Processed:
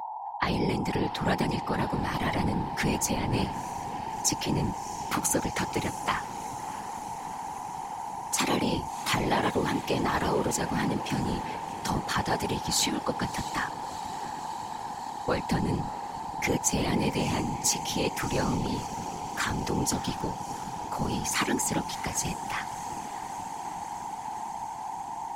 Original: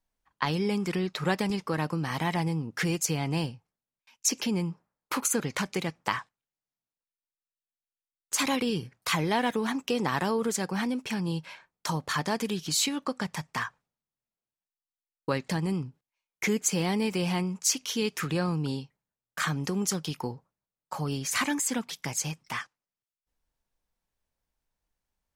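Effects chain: whine 860 Hz -34 dBFS; diffused feedback echo 0.669 s, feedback 78%, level -15 dB; whisperiser

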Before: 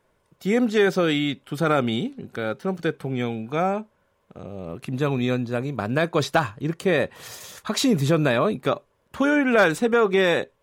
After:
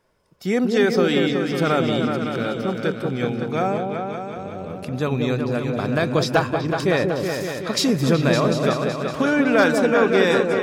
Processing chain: bell 5100 Hz +9 dB 0.27 oct; repeats that get brighter 0.187 s, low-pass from 750 Hz, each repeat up 2 oct, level -3 dB

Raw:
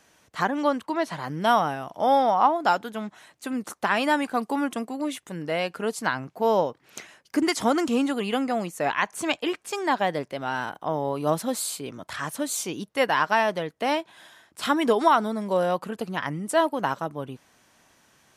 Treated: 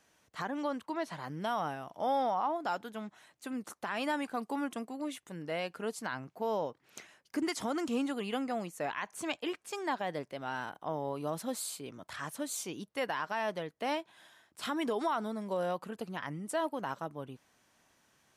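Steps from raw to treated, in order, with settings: limiter -14.5 dBFS, peak gain reduction 6 dB; gain -9 dB

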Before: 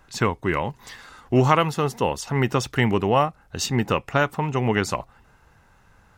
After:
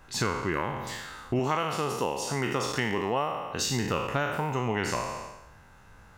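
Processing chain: spectral trails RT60 0.86 s; 1.39–3.68 low shelf 110 Hz -11 dB; compressor 2.5:1, threshold -29 dBFS, peak gain reduction 12 dB

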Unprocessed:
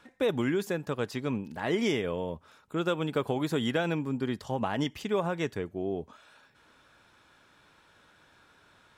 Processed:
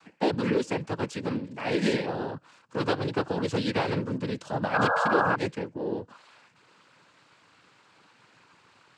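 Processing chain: noise vocoder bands 8; painted sound noise, 4.73–5.36, 450–1700 Hz -27 dBFS; gain +2 dB

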